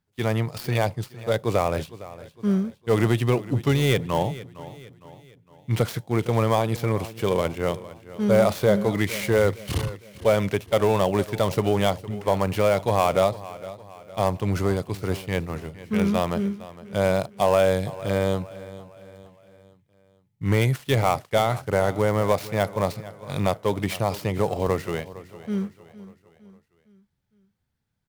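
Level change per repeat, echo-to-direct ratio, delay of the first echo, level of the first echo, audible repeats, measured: -6.5 dB, -16.0 dB, 459 ms, -17.0 dB, 3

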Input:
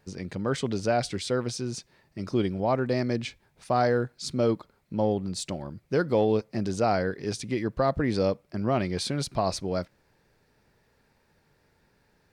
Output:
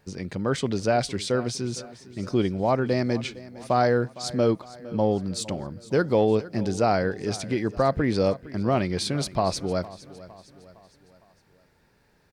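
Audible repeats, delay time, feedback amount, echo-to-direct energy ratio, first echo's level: 3, 459 ms, 49%, -17.0 dB, -18.0 dB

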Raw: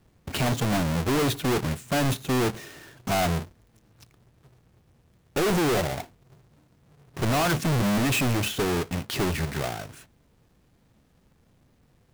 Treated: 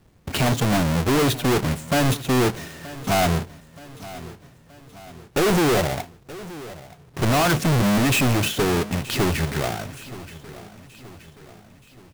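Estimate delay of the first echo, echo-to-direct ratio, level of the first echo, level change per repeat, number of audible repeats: 925 ms, -16.5 dB, -17.5 dB, -6.0 dB, 3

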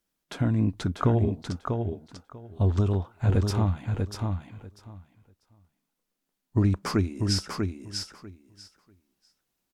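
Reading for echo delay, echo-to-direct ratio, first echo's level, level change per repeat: 643 ms, -4.5 dB, -4.5 dB, -16.0 dB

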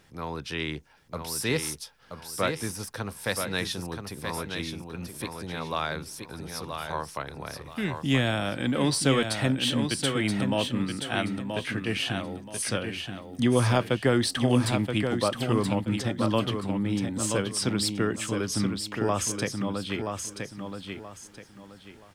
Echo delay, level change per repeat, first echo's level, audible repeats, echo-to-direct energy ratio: 977 ms, -11.0 dB, -6.0 dB, 3, -5.5 dB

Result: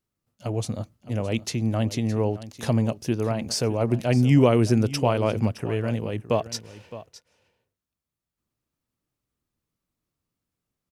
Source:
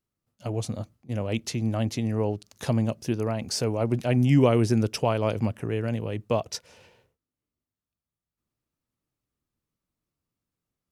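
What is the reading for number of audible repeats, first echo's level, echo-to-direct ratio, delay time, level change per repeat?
1, -15.5 dB, -15.5 dB, 615 ms, no regular repeats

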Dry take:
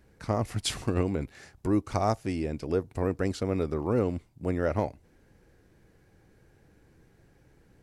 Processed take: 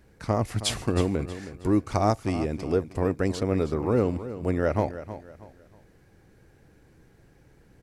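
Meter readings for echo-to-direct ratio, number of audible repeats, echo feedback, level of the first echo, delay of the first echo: -12.5 dB, 3, 32%, -13.0 dB, 318 ms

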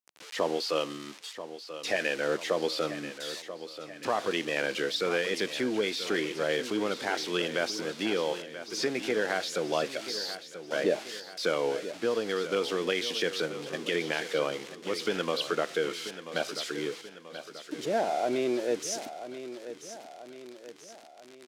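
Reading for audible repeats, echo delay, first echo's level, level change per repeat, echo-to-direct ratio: 4, 985 ms, -12.0 dB, -6.0 dB, -11.0 dB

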